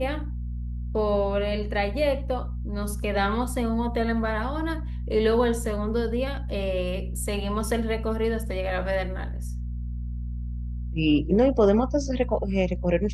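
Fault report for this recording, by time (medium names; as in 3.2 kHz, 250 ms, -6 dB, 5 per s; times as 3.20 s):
hum 60 Hz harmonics 4 -31 dBFS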